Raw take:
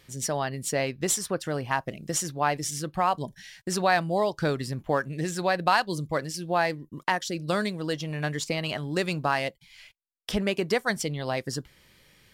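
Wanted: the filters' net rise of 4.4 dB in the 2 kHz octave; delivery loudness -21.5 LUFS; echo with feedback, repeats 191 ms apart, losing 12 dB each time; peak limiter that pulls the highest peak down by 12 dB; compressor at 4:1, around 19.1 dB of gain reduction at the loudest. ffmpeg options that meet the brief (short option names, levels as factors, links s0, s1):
-af "equalizer=f=2000:t=o:g=5.5,acompressor=threshold=0.00891:ratio=4,alimiter=level_in=2.66:limit=0.0631:level=0:latency=1,volume=0.376,aecho=1:1:191|382|573:0.251|0.0628|0.0157,volume=12.6"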